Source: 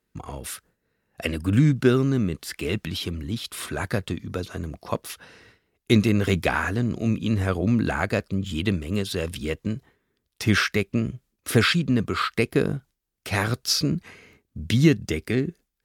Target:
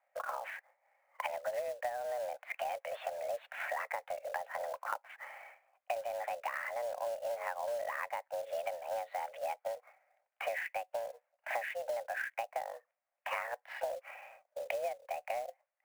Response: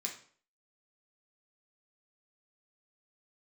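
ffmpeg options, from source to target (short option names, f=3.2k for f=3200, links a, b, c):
-af "highpass=f=210:t=q:w=0.5412,highpass=f=210:t=q:w=1.307,lowpass=f=2k:t=q:w=0.5176,lowpass=f=2k:t=q:w=0.7071,lowpass=f=2k:t=q:w=1.932,afreqshift=350,acompressor=threshold=-36dB:ratio=20,acrusher=bits=4:mode=log:mix=0:aa=0.000001,volume=2dB"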